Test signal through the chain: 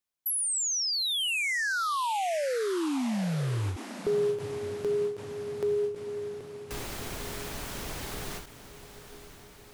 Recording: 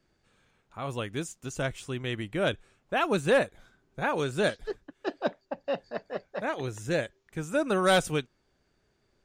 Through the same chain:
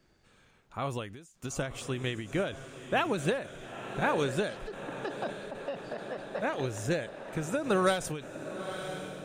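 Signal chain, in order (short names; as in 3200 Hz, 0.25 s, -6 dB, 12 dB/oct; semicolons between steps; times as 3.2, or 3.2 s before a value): in parallel at +0.5 dB: compressor, threshold -37 dBFS; on the sum: diffused feedback echo 0.904 s, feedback 64%, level -13 dB; ending taper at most 110 dB/s; gain -2 dB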